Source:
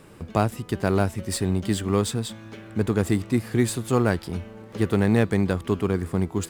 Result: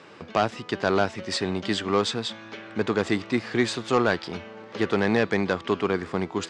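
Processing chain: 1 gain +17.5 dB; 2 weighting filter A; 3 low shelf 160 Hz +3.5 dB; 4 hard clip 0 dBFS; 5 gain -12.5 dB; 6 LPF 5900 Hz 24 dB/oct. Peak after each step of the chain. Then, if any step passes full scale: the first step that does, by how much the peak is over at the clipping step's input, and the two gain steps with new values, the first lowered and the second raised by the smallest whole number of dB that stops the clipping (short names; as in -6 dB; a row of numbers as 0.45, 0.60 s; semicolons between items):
+12.0, +8.5, +8.5, 0.0, -12.5, -11.5 dBFS; step 1, 8.5 dB; step 1 +8.5 dB, step 5 -3.5 dB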